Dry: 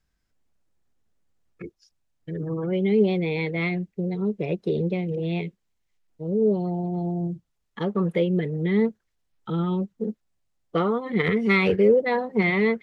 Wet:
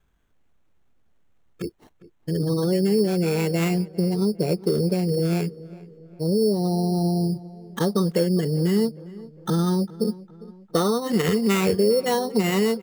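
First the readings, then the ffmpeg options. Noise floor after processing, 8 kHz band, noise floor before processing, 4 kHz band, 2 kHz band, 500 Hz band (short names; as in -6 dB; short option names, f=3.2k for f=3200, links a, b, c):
-61 dBFS, n/a, -75 dBFS, +7.5 dB, -6.0 dB, +1.0 dB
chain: -filter_complex "[0:a]equalizer=f=2.2k:w=3.1:g=-8.5,acompressor=threshold=-27dB:ratio=3,acrusher=samples=9:mix=1:aa=0.000001,asplit=2[a][b];[b]adelay=403,lowpass=f=2.1k:p=1,volume=-19dB,asplit=2[c][d];[d]adelay=403,lowpass=f=2.1k:p=1,volume=0.5,asplit=2[e][f];[f]adelay=403,lowpass=f=2.1k:p=1,volume=0.5,asplit=2[g][h];[h]adelay=403,lowpass=f=2.1k:p=1,volume=0.5[i];[a][c][e][g][i]amix=inputs=5:normalize=0,volume=7.5dB"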